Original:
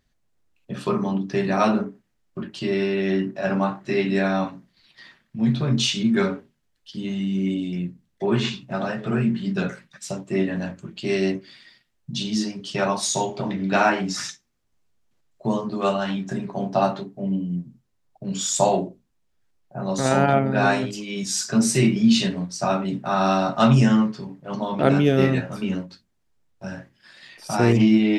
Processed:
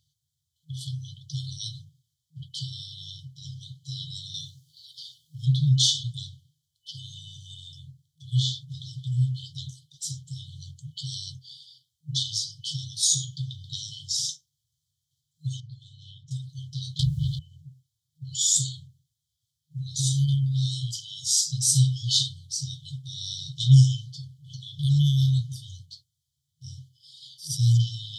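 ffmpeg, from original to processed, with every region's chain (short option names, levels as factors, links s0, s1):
-filter_complex "[0:a]asettb=1/sr,asplit=3[s0][s1][s2];[s0]atrim=end=4.344[s3];[s1]atrim=start=4.34:end=5.46,asetpts=PTS-STARTPTS,afade=t=in:d=0.004:c=qsin,afade=t=out:st=1.116:d=0.004:c=qsin,highshelf=f=3600:g=11,bandreject=f=50:t=h:w=6,bandreject=f=100:t=h:w=6,bandreject=f=150:t=h:w=6,bandreject=f=200:t=h:w=6,bandreject=f=250:t=h:w=6,bandreject=f=300:t=h:w=6,bandreject=f=350:t=h:w=6[s4];[s2]atrim=start=5.456[s5];[s3][s4]acrossfade=d=0.004:c1=hsin:c2=qsin[s6];[s6][s5]acrossfade=d=0.004:c1=qsin:c2=hsin,asettb=1/sr,asplit=3[s7][s8][s9];[s7]atrim=end=15.604[s10];[s8]atrim=start=15.6:end=16.31,asetpts=PTS-STARTPTS,afade=t=in:d=0.004:c=qsin,afade=t=out:st=0.706:d=0.004:c=qsin,lowpass=f=1000:p=1,acompressor=threshold=0.0631:ratio=6:attack=3.2:release=140:knee=1:detection=peak[s11];[s9]atrim=start=16.306[s12];[s10][s11]acrossfade=d=0.004:c1=hsin:c2=qsin[s13];[s13][s12]acrossfade=d=0.004:c1=qsin:c2=hsin,asettb=1/sr,asplit=3[s14][s15][s16];[s14]atrim=end=16.994[s17];[s15]atrim=start=16.99:end=17.39,asetpts=PTS-STARTPTS,afade=t=in:d=0.004:c=qsin,afade=t=out:st=0.396:d=0.004:c=qsin,aeval=exprs='0.158*sin(PI/2*6.31*val(0)/0.158)':c=same,afreqshift=-64,asplit=2[s18][s19];[s19]adelay=20,volume=0.282[s20];[s18][s20]amix=inputs=2:normalize=0,atrim=end_sample=17640[s21];[s16]atrim=start=17.386[s22];[s17][s21]acrossfade=d=0.004:c1=hsin:c2=qsin[s23];[s23][s22]acrossfade=d=0.004:c1=qsin:c2=hsin,afftfilt=real='re*(1-between(b*sr/4096,160,3000))':imag='im*(1-between(b*sr/4096,160,3000))':win_size=4096:overlap=0.75,highpass=f=84:w=0.5412,highpass=f=84:w=1.3066,volume=1.5"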